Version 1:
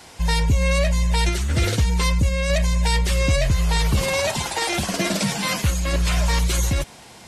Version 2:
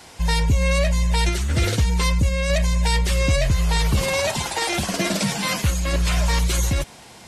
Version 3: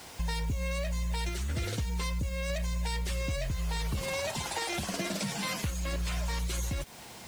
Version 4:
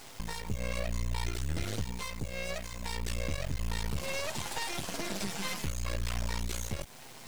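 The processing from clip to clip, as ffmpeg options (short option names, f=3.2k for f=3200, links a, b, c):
-af anull
-af "acompressor=threshold=-28dB:ratio=4,acrusher=bits=7:mix=0:aa=0.000001,volume=-3.5dB"
-af "flanger=delay=7.4:depth=6.5:regen=-38:speed=0.42:shape=sinusoidal,aeval=exprs='max(val(0),0)':c=same,volume=5.5dB"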